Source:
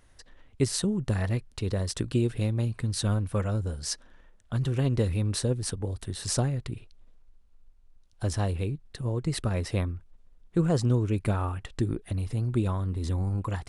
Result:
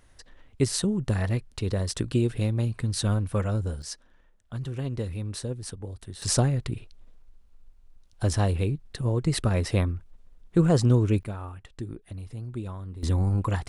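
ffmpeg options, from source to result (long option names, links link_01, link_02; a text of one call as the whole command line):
ffmpeg -i in.wav -af "asetnsamples=nb_out_samples=441:pad=0,asendcmd='3.82 volume volume -5.5dB;6.22 volume volume 4dB;11.23 volume volume -8dB;13.03 volume volume 4.5dB',volume=1.5dB" out.wav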